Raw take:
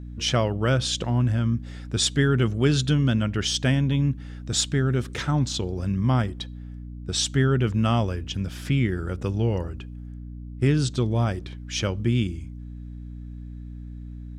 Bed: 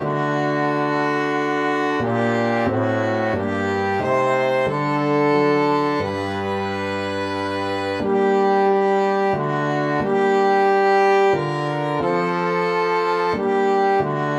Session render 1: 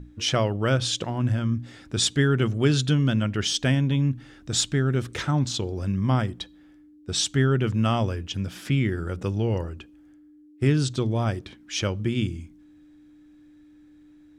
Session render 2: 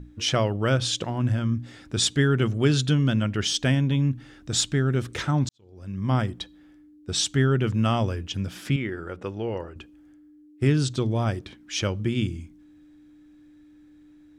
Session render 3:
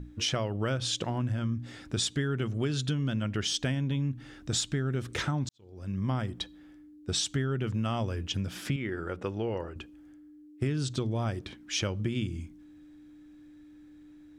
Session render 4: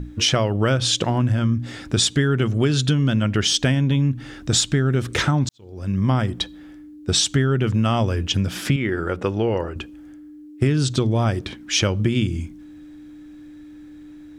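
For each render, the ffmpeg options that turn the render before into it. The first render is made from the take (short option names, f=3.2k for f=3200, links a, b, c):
-af "bandreject=f=60:t=h:w=6,bandreject=f=120:t=h:w=6,bandreject=f=180:t=h:w=6,bandreject=f=240:t=h:w=6"
-filter_complex "[0:a]asettb=1/sr,asplit=3[a][b][c];[a]atrim=end=8.764[d];[b]atrim=start=8.76:end=9.76,asetpts=PTS-STARTPTS,afade=t=in:d=0.004:c=qsin,afade=t=out:st=0.996:d=0.004:c=qsin,bass=f=250:g=-11,treble=f=4k:g=-12[e];[c]atrim=start=9.756[f];[d][e]acrossfade=d=0.004:c1=hsin:c2=qsin[g];[g][f]acrossfade=d=0.004:c1=qsin:c2=hsin,asplit=2[h][i];[h]atrim=end=5.49,asetpts=PTS-STARTPTS,afade=t=out:st=5.486:d=0.004:c=hsin[j];[i]atrim=start=5.49,asetpts=PTS-STARTPTS,afade=t=in:d=0.67:c=qua[k];[j][k]concat=n=2:v=0:a=1"
-af "acompressor=threshold=-27dB:ratio=6"
-af "volume=11dB"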